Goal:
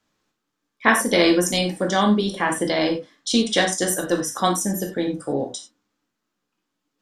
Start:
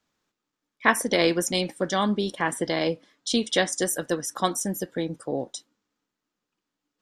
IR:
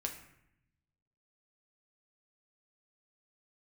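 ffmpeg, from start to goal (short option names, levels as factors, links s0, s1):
-filter_complex "[1:a]atrim=start_sample=2205,atrim=end_sample=3087,asetrate=29106,aresample=44100[s0];[0:a][s0]afir=irnorm=-1:irlink=0,volume=1.33"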